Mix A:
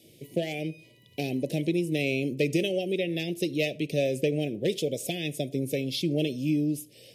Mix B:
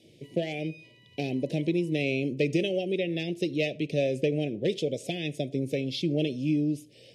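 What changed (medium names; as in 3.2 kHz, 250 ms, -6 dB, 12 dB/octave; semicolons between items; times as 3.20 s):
background +5.0 dB; master: add distance through air 78 m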